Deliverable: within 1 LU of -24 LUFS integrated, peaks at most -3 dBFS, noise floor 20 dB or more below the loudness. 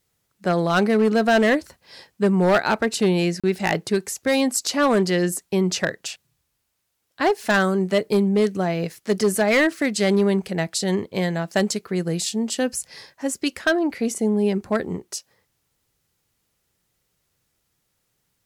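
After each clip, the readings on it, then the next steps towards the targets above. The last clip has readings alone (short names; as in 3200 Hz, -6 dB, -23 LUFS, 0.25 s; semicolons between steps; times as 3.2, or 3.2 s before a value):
clipped 1.0%; flat tops at -12.5 dBFS; dropouts 1; longest dropout 36 ms; loudness -21.5 LUFS; peak -12.5 dBFS; loudness target -24.0 LUFS
-> clip repair -12.5 dBFS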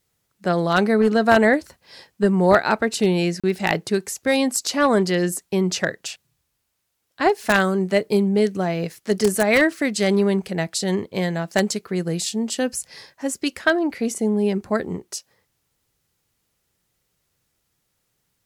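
clipped 0.0%; dropouts 1; longest dropout 36 ms
-> interpolate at 3.4, 36 ms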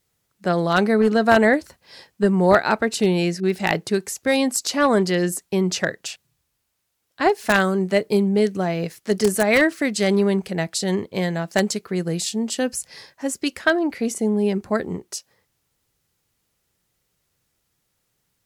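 dropouts 0; loudness -21.0 LUFS; peak -3.5 dBFS; loudness target -24.0 LUFS
-> gain -3 dB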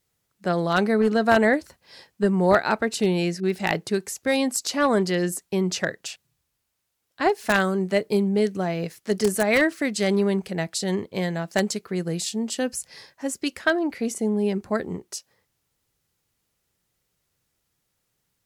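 loudness -24.0 LUFS; peak -6.5 dBFS; noise floor -76 dBFS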